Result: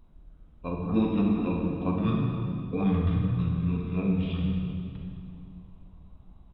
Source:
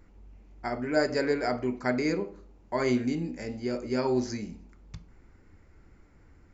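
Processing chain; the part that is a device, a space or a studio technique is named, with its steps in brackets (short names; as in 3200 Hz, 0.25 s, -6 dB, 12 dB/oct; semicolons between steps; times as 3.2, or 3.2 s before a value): monster voice (pitch shift -5.5 st; formant shift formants -5.5 st; low shelf 230 Hz +4.5 dB; reverb RT60 2.6 s, pre-delay 34 ms, DRR -0.5 dB); gain -2.5 dB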